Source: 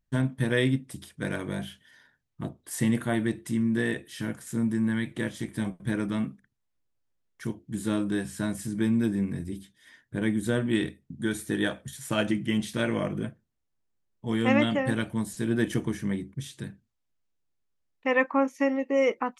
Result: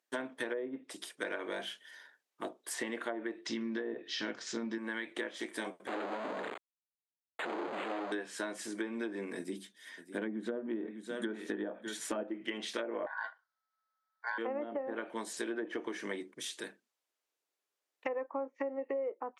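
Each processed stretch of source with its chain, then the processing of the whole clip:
3.46–4.78 steep low-pass 5400 Hz + tone controls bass +11 dB, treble +15 dB + notches 60/120/180/240/300/360/420 Hz
5.87–8.12 infinite clipping + bell 4200 Hz -13.5 dB 1.6 oct + decimation joined by straight lines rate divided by 8×
9.37–12.23 bell 210 Hz +11.5 dB 0.65 oct + echo 0.604 s -14 dB
13.06–14.38 ring modulator 1300 Hz + fixed phaser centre 1800 Hz, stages 8
whole clip: HPF 370 Hz 24 dB/oct; treble ducked by the level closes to 710 Hz, closed at -25.5 dBFS; compressor 10:1, threshold -37 dBFS; gain +3.5 dB

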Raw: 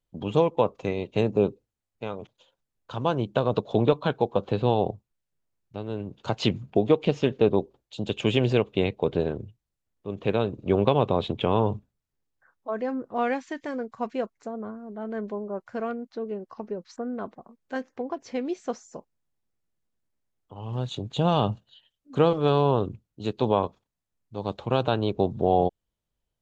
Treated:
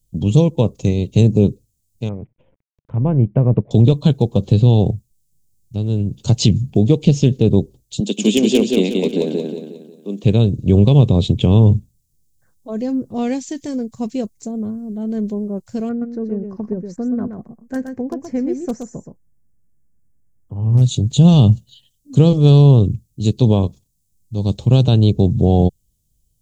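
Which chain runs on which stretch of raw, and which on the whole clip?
2.09–3.71 G.711 law mismatch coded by A + elliptic low-pass 2200 Hz, stop band 50 dB + upward compressor, threshold -47 dBFS
8–10.24 steep high-pass 200 Hz 48 dB/oct + hard clip -13.5 dBFS + feedback echo 0.18 s, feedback 42%, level -3 dB
15.89–20.82 resonant high shelf 2400 Hz -12.5 dB, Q 3 + hard clip -18 dBFS + echo 0.123 s -7 dB
whole clip: EQ curve 140 Hz 0 dB, 1400 Hz -29 dB, 7000 Hz +3 dB; maximiser +20 dB; gain -1 dB

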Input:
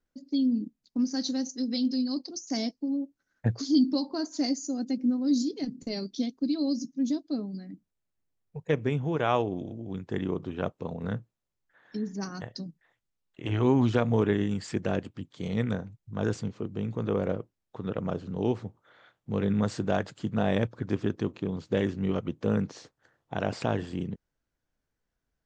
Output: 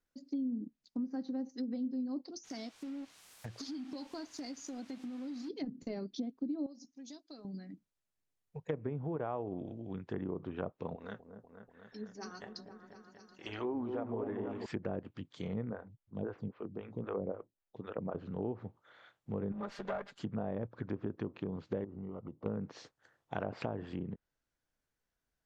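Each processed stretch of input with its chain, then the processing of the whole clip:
2.43–5.48 G.711 law mismatch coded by A + compressor 16:1, threshold -33 dBFS + added noise white -55 dBFS
6.66–7.45 transient shaper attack +1 dB, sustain -3 dB + bell 160 Hz -15 dB 2.5 oct + compressor 3:1, threshold -43 dBFS
10.95–14.66 bell 140 Hz -14.5 dB 1 oct + flange 1.1 Hz, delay 2.4 ms, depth 6.4 ms, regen +45% + repeats that get brighter 0.243 s, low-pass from 750 Hz, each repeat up 1 oct, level -6 dB
15.7–18.15 air absorption 180 m + photocell phaser 3.8 Hz
19.52–20.19 minimum comb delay 5 ms + low shelf 340 Hz -11 dB
21.84–22.46 compressor, threshold -34 dBFS + polynomial smoothing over 65 samples + mismatched tape noise reduction decoder only
whole clip: compressor 6:1, threshold -27 dBFS; treble ducked by the level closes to 870 Hz, closed at -28 dBFS; low shelf 470 Hz -5.5 dB; gain -1.5 dB

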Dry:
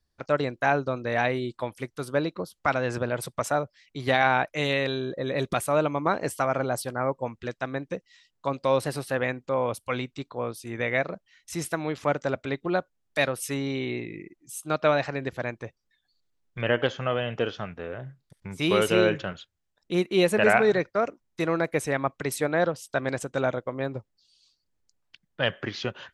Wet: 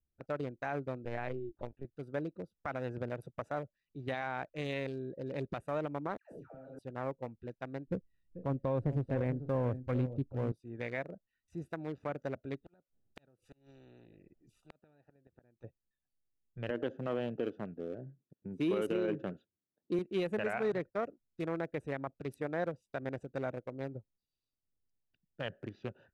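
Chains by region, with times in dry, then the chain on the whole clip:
1.05–1.85 air absorption 130 m + LPC vocoder at 8 kHz pitch kept
6.17–6.79 compressor 5:1, threshold -33 dBFS + doubler 34 ms -8 dB + dispersion lows, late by 0.15 s, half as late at 980 Hz
7.87–10.52 tilt -4.5 dB/oct + tapped delay 0.441/0.48 s -12/-20 dB
12.61–15.64 flipped gate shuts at -19 dBFS, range -37 dB + spectral compressor 4:1
16.7–19.99 HPF 130 Hz + bell 300 Hz +10.5 dB 1.5 oct
whole clip: Wiener smoothing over 41 samples; dynamic EQ 4400 Hz, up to -5 dB, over -45 dBFS, Q 1.1; limiter -16 dBFS; gain -8.5 dB

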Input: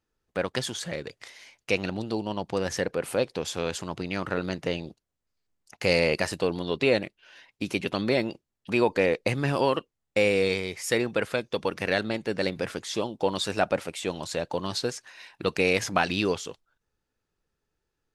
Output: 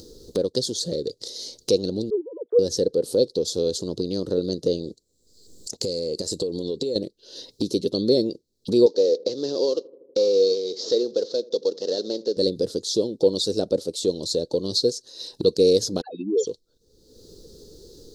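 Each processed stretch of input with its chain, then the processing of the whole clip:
2.1–2.59 sine-wave speech + fixed phaser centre 780 Hz, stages 6 + upward expander, over -50 dBFS
4.83–6.96 bell 7500 Hz +11.5 dB 0.24 oct + compressor, threshold -31 dBFS
8.86–12.37 CVSD 32 kbps + HPF 410 Hz + darkening echo 80 ms, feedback 57%, low-pass 880 Hz, level -21 dB
16.01–16.47 spectral contrast raised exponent 4 + HPF 460 Hz + dispersion lows, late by 95 ms, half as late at 1000 Hz
whole clip: EQ curve 150 Hz 0 dB, 480 Hz +10 dB, 730 Hz -13 dB, 2400 Hz -28 dB, 4100 Hz +10 dB, 9500 Hz 0 dB; upward compressor, threshold -21 dBFS

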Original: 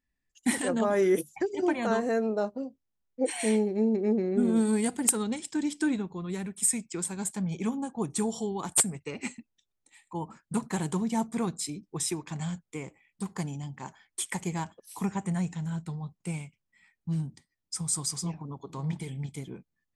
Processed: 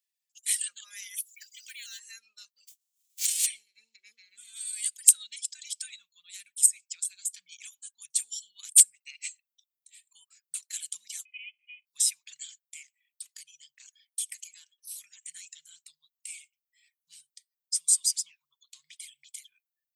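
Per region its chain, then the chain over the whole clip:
1.16–1.99 elliptic high-pass 1500 Hz, stop band 50 dB + companded quantiser 6-bit
2.67–3.45 spectral whitening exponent 0.3 + bell 7200 Hz +7 dB 0.48 oct
6.66–7.34 bell 330 Hz -11.5 dB 0.2 oct + compressor 2.5:1, threshold -35 dBFS
11.25–11.87 half-waves squared off + vocal tract filter a + inverted band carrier 3200 Hz
12.82–15.23 notch 7200 Hz, Q 14 + compressor, threshold -34 dBFS + hard clip -27 dBFS
whole clip: inverse Chebyshev high-pass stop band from 810 Hz, stop band 60 dB; reverb removal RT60 0.83 s; high shelf 6100 Hz +6 dB; gain +3.5 dB

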